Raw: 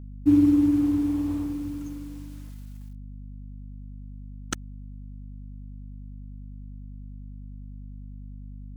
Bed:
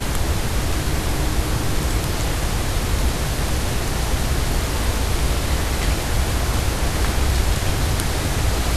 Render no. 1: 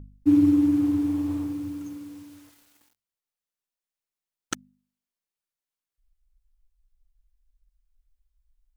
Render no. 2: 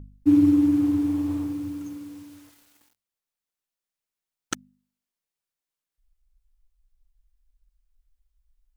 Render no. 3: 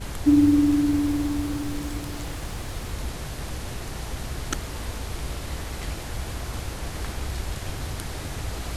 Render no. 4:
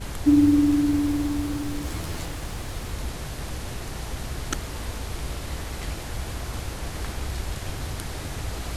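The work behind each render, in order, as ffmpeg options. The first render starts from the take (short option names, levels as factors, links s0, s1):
-af "bandreject=f=50:t=h:w=4,bandreject=f=100:t=h:w=4,bandreject=f=150:t=h:w=4,bandreject=f=200:t=h:w=4,bandreject=f=250:t=h:w=4"
-af "volume=1.12"
-filter_complex "[1:a]volume=0.266[s0];[0:a][s0]amix=inputs=2:normalize=0"
-filter_complex "[0:a]asettb=1/sr,asplit=3[s0][s1][s2];[s0]atrim=end=1.844[s3];[s1]atrim=start=1.84:end=2.26,asetpts=PTS-STARTPTS,afade=t=in:d=0.004:c=qsin,afade=t=out:st=0.416:d=0.004:c=qsin,asplit=2[s4][s5];[s5]adelay=12,volume=0.75[s6];[s4][s6]amix=inputs=2:normalize=0,atrim=end_sample=18522[s7];[s2]atrim=start=2.256[s8];[s3][s7]acrossfade=d=0.004:c1=hsin:c2=qsin[s9];[s9][s8]acrossfade=d=0.004:c1=qsin:c2=hsin"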